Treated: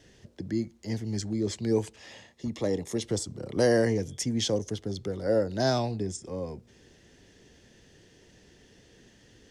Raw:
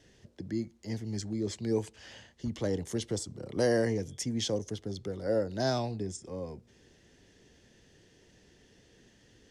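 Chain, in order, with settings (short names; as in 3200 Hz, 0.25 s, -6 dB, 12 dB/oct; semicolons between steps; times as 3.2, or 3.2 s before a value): 1.96–3.04 notch comb 1500 Hz; gain +4 dB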